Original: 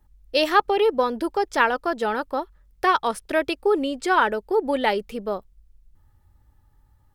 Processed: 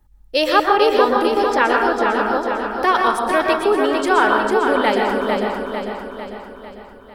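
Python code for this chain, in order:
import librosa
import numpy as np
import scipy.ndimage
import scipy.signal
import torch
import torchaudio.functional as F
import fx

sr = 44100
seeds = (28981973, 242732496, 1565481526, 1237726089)

p1 = fx.high_shelf(x, sr, hz=6200.0, db=-11.5, at=(1.54, 2.33))
p2 = p1 + fx.echo_feedback(p1, sr, ms=449, feedback_pct=52, wet_db=-5.5, dry=0)
p3 = fx.rev_plate(p2, sr, seeds[0], rt60_s=0.67, hf_ratio=0.5, predelay_ms=110, drr_db=2.0)
y = p3 * 10.0 ** (2.5 / 20.0)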